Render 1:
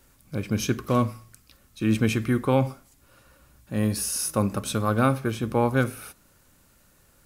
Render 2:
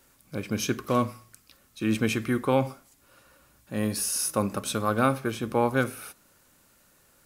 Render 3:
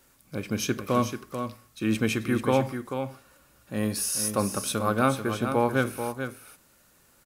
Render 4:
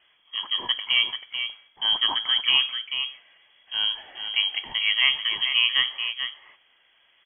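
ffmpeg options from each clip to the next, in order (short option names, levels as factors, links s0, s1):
-af "lowshelf=f=140:g=-11"
-af "aecho=1:1:438:0.398"
-af "lowpass=f=2900:t=q:w=0.5098,lowpass=f=2900:t=q:w=0.6013,lowpass=f=2900:t=q:w=0.9,lowpass=f=2900:t=q:w=2.563,afreqshift=-3400,volume=1.26"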